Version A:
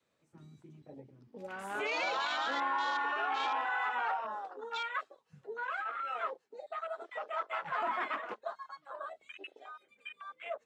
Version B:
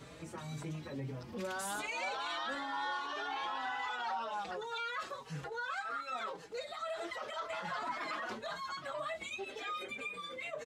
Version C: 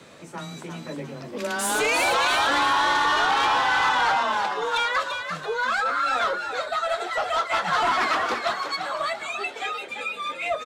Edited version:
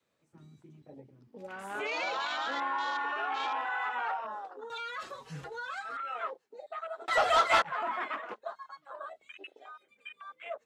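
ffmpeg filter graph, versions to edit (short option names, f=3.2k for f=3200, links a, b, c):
-filter_complex "[0:a]asplit=3[a][b][c];[a]atrim=end=4.702[d];[1:a]atrim=start=4.698:end=5.972[e];[b]atrim=start=5.968:end=7.082[f];[2:a]atrim=start=7.078:end=7.622[g];[c]atrim=start=7.618[h];[d][e]acrossfade=d=0.004:c1=hsin:c2=hsin[i];[i][f]acrossfade=d=0.004:c1=hsin:c2=hsin[j];[j][g]acrossfade=d=0.004:c1=hsin:c2=hsin[k];[k][h]acrossfade=d=0.004:c1=hsin:c2=hsin"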